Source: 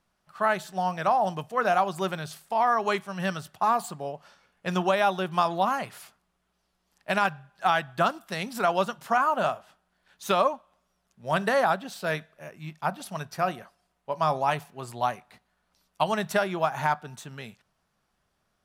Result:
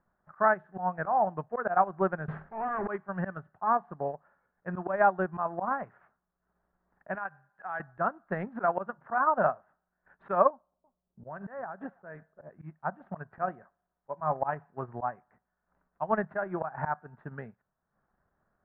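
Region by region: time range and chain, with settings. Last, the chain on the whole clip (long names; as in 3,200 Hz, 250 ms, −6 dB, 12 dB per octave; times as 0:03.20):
0:02.28–0:02.88: low-shelf EQ 220 Hz +9.5 dB + downward compressor 8 to 1, threshold −36 dBFS + leveller curve on the samples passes 5
0:07.15–0:07.80: spectral tilt +2.5 dB per octave + downward compressor 2.5 to 1, threshold −32 dBFS
0:10.50–0:12.50: low-pass that shuts in the quiet parts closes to 510 Hz, open at −20.5 dBFS + downward compressor 20 to 1, threshold −33 dBFS + single-tap delay 339 ms −21 dB
whole clip: transient designer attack +5 dB, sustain −9 dB; elliptic low-pass filter 1,700 Hz, stop band 80 dB; volume swells 127 ms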